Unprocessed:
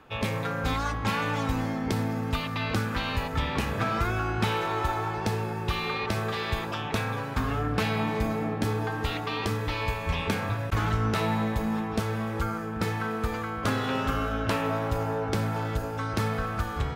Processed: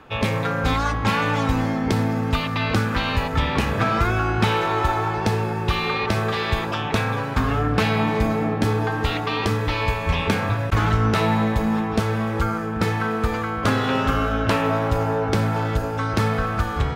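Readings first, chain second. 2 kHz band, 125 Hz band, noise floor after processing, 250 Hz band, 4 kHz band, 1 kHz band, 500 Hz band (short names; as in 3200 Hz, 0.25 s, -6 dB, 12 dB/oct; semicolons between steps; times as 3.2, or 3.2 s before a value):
+6.5 dB, +7.0 dB, -26 dBFS, +7.0 dB, +6.0 dB, +7.0 dB, +7.0 dB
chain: high shelf 8300 Hz -6.5 dB; gain +7 dB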